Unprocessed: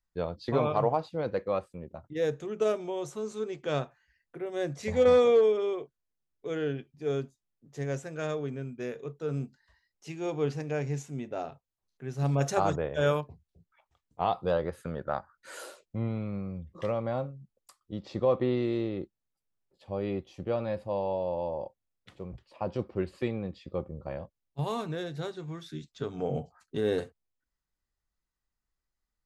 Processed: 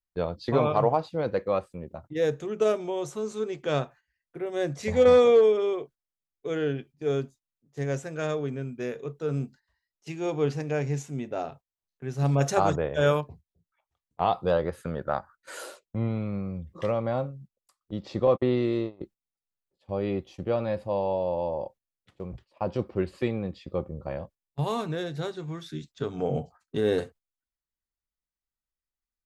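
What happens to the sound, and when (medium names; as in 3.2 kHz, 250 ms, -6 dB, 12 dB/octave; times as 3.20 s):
18.27–19.01 s: gate -31 dBFS, range -47 dB
whole clip: gate -51 dBFS, range -13 dB; trim +3.5 dB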